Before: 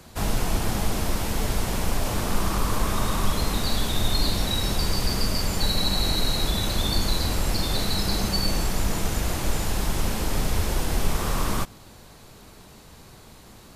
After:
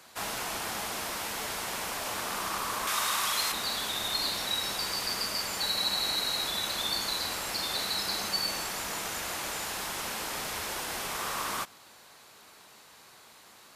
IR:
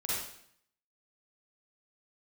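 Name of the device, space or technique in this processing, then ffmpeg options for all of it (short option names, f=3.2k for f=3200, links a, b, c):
filter by subtraction: -filter_complex "[0:a]asplit=2[a][b];[b]lowpass=1.4k,volume=-1[c];[a][c]amix=inputs=2:normalize=0,asettb=1/sr,asplit=3[d][e][f];[d]atrim=end=2.874[g];[e]atrim=start=2.87:end=3.52,asetpts=PTS-STARTPTS,afade=t=in:d=0.004:c=qsin,afade=t=out:st=0.646:d=0.004:c=qsin,tiltshelf=f=810:g=-6[h];[f]atrim=start=3.516[i];[g][h]acrossfade=d=0.004:c1=hsin:c2=qsin[j];[j][i]acrossfade=d=0.004:c1=qsin:c2=hsin,volume=-3dB"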